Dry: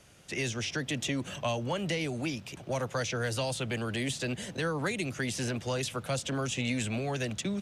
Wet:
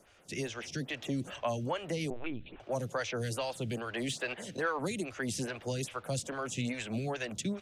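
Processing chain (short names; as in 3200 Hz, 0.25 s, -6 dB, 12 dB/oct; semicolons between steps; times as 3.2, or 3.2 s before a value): 2.1–2.6 LPC vocoder at 8 kHz pitch kept; 3.94–4.79 overdrive pedal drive 11 dB, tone 3100 Hz, clips at -18 dBFS; photocell phaser 2.4 Hz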